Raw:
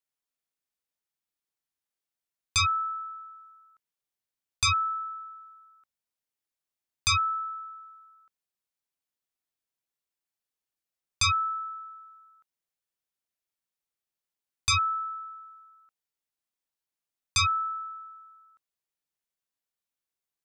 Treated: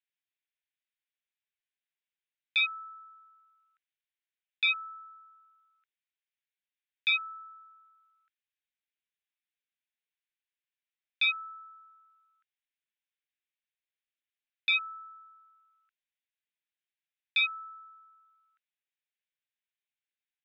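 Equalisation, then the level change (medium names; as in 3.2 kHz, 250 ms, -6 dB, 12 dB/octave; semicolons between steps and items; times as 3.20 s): Chebyshev band-pass 1.5–3.8 kHz, order 3; static phaser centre 2.4 kHz, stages 4; +3.0 dB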